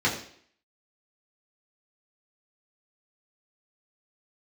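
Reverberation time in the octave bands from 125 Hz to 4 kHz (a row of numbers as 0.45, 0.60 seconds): 0.50, 0.60, 0.60, 0.55, 0.60, 0.60 seconds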